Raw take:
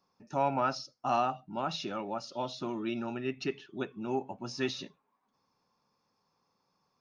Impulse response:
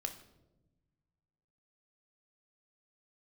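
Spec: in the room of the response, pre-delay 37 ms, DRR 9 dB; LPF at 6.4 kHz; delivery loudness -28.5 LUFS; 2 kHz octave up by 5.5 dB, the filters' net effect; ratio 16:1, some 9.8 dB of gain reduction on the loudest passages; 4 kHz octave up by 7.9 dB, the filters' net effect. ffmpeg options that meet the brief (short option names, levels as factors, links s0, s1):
-filter_complex "[0:a]lowpass=6400,equalizer=f=2000:t=o:g=4.5,equalizer=f=4000:t=o:g=9,acompressor=threshold=0.0251:ratio=16,asplit=2[s0][s1];[1:a]atrim=start_sample=2205,adelay=37[s2];[s1][s2]afir=irnorm=-1:irlink=0,volume=0.398[s3];[s0][s3]amix=inputs=2:normalize=0,volume=2.82"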